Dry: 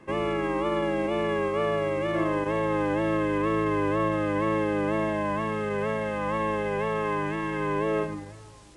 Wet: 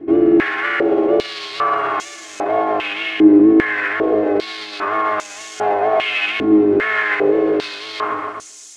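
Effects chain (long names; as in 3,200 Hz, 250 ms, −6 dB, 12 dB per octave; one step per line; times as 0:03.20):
lower of the sound and its delayed copy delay 2.8 ms
parametric band 1,000 Hz −12.5 dB 0.21 octaves
on a send: echo machine with several playback heads 126 ms, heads first and second, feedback 45%, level −14.5 dB
on the sum: boost into a limiter +24 dB
band-pass on a step sequencer 2.5 Hz 310–6,600 Hz
level +2.5 dB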